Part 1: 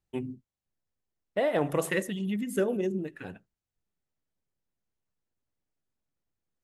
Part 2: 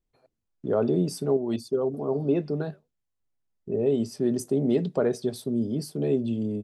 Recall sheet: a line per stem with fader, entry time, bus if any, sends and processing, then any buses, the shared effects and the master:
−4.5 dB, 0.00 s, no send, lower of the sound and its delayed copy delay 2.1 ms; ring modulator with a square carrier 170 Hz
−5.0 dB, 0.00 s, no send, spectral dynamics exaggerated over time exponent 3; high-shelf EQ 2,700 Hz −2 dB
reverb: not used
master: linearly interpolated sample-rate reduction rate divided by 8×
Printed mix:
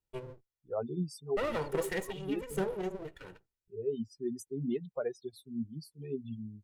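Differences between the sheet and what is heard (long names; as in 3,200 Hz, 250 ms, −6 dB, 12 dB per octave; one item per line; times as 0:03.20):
stem 1: missing ring modulator with a square carrier 170 Hz
master: missing linearly interpolated sample-rate reduction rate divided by 8×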